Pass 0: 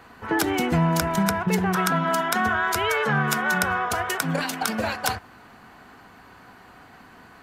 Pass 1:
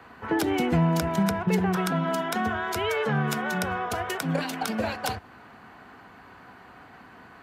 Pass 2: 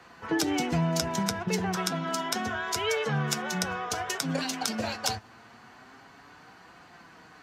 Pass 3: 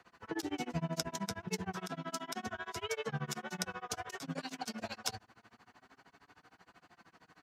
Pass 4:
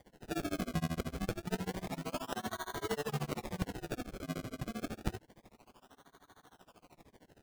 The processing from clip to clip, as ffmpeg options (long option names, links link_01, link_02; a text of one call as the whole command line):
ffmpeg -i in.wav -filter_complex "[0:a]highpass=48,bass=frequency=250:gain=-1,treble=frequency=4000:gain=-8,acrossover=split=210|800|2400[link_01][link_02][link_03][link_04];[link_03]acompressor=threshold=-37dB:ratio=6[link_05];[link_01][link_02][link_05][link_04]amix=inputs=4:normalize=0" out.wav
ffmpeg -i in.wav -af "equalizer=frequency=5900:width=0.97:gain=13,flanger=delay=5.6:depth=3.6:regen=48:speed=0.29:shape=triangular" out.wav
ffmpeg -i in.wav -af "tremolo=f=13:d=0.98,volume=-6.5dB" out.wav
ffmpeg -i in.wav -af "acrusher=samples=33:mix=1:aa=0.000001:lfo=1:lforange=33:lforate=0.28,volume=1.5dB" out.wav